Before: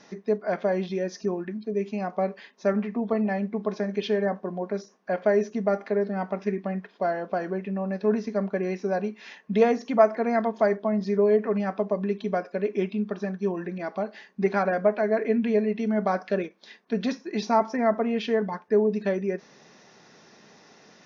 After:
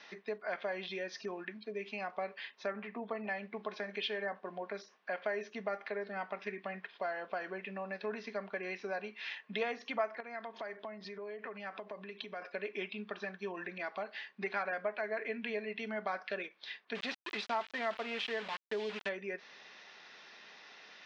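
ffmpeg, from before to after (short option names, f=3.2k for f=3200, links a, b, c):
-filter_complex "[0:a]asettb=1/sr,asplit=3[a][b][c];[a]atrim=end=2.664[d];[b]atrim=start=2.66:end=3.24,asetpts=PTS-STARTPTS,afade=t=in:d=0.004:c=qsin,afade=t=out:st=0.576:d=0.004:c=qsin,highshelf=f=2.8k:g=-9.5[e];[c]atrim=start=3.236[f];[d][e]acrossfade=d=0.004:c1=hsin:c2=qsin[g];[g][f]acrossfade=d=0.004:c1=qsin:c2=hsin,asettb=1/sr,asplit=3[h][i][j];[h]atrim=end=10.204[k];[i]atrim=start=10.2:end=12.42,asetpts=PTS-STARTPTS,afade=t=in:d=0.004:c=qsin,afade=t=out:st=2.216:d=0.004:c=qsin,acompressor=threshold=-32dB:ratio=6:attack=3.2:release=140:knee=1:detection=peak[l];[j]atrim=start=12.416[m];[k][l]acrossfade=d=0.004:c1=hsin:c2=qsin[n];[n][m]acrossfade=d=0.004:c1=qsin:c2=hsin,asettb=1/sr,asplit=3[o][p][q];[o]atrim=end=16.954[r];[p]atrim=start=16.95:end=19.09,asetpts=PTS-STARTPTS,afade=t=in:d=0.004:c=qsin,afade=t=out:st=2.136:d=0.004:c=qsin,aeval=exprs='val(0)*gte(abs(val(0)),0.0237)':c=same[s];[q]atrim=start=19.086[t];[r][s]acrossfade=d=0.004:c1=hsin:c2=qsin[u];[u][t]acrossfade=d=0.004:c1=qsin:c2=hsin,lowpass=f=3.4k:w=0.5412,lowpass=f=3.4k:w=1.3066,aderivative,acompressor=threshold=-53dB:ratio=2,volume=14.5dB"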